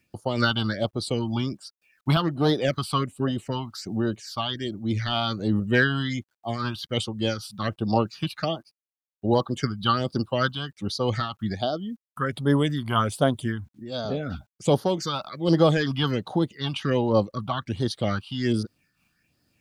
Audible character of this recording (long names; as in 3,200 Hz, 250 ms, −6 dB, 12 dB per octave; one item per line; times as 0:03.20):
phaser sweep stages 6, 1.3 Hz, lowest notch 470–2,300 Hz
a quantiser's noise floor 12 bits, dither none
amplitude modulation by smooth noise